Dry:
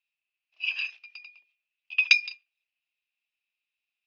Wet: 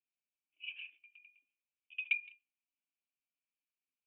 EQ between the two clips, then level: vocal tract filter i; air absorption 320 m; bell 1500 Hz +6 dB; +4.5 dB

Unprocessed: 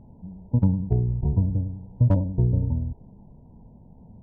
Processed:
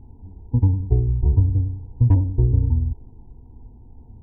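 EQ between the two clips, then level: low shelf 240 Hz +11 dB; fixed phaser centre 880 Hz, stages 8; 0.0 dB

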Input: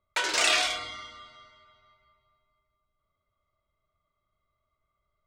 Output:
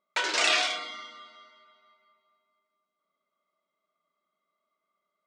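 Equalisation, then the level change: brick-wall FIR high-pass 170 Hz; LPF 6600 Hz 12 dB/oct; 0.0 dB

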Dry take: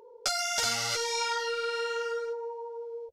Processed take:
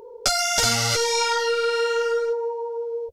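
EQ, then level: low shelf 330 Hz +12 dB; high shelf 6400 Hz +4 dB; +6.5 dB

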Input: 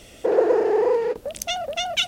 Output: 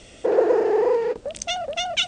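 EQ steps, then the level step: steep low-pass 9100 Hz 96 dB/oct; 0.0 dB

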